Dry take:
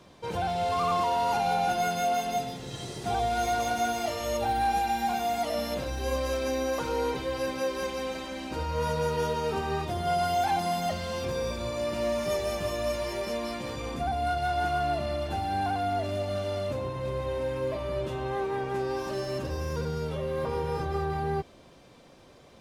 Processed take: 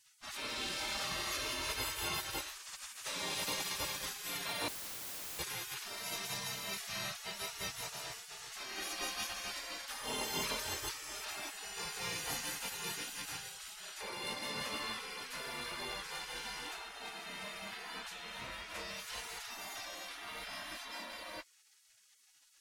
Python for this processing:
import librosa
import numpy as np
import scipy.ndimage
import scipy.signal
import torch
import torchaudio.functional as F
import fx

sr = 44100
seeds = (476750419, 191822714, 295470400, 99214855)

y = fx.spec_gate(x, sr, threshold_db=-25, keep='weak')
y = fx.overflow_wrap(y, sr, gain_db=44.0, at=(4.68, 5.39))
y = y * librosa.db_to_amplitude(4.5)